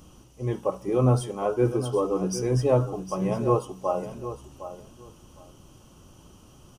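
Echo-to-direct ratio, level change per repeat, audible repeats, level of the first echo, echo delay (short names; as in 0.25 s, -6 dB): -12.0 dB, -15.0 dB, 2, -12.0 dB, 0.759 s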